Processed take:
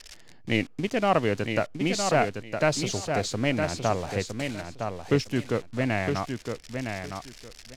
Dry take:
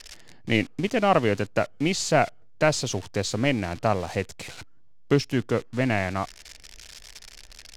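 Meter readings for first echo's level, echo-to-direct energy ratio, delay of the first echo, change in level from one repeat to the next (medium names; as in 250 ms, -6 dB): -6.0 dB, -6.0 dB, 961 ms, -14.5 dB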